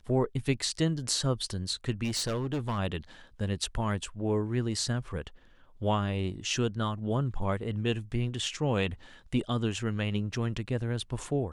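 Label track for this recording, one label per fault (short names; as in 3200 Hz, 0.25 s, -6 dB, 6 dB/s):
2.030000	2.780000	clipped -27 dBFS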